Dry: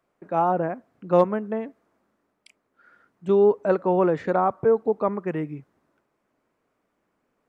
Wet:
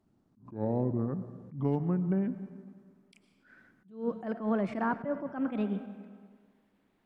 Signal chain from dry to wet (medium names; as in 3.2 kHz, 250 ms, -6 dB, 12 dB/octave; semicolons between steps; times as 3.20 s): gliding tape speed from 57% -> 155%; resonant low shelf 340 Hz +8.5 dB, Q 1.5; compression 6:1, threshold -23 dBFS, peak gain reduction 14 dB; on a send at -12.5 dB: reverberation RT60 1.7 s, pre-delay 70 ms; on the sum: attacks held to a fixed rise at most 150 dB/s; trim -2.5 dB